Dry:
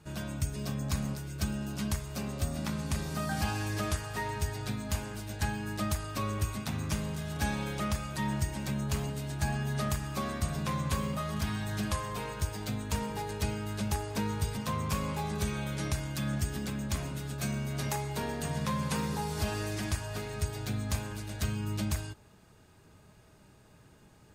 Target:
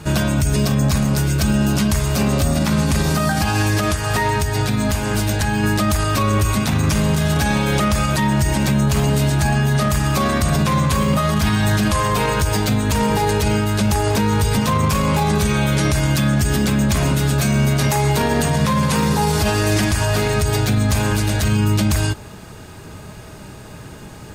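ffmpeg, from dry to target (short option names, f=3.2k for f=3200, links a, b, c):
-filter_complex "[0:a]asettb=1/sr,asplit=3[a][b][c];[a]atrim=end=3.184[d];[b]atrim=start=3.18:end=5.64,asetpts=PTS-STARTPTS,afade=t=in:d=0.004:c=qsin,afade=t=out:st=2.456:d=0.004:c=qsin,acompressor=threshold=-35dB:ratio=6[e];[c]atrim=start=5.636[f];[d][e]acrossfade=d=0.004:c1=hsin:c2=qsin[g];[g][f]acrossfade=d=0.004:c1=qsin:c2=hsin,alimiter=level_in=30dB:limit=-1dB:release=50:level=0:latency=1,volume=-8dB"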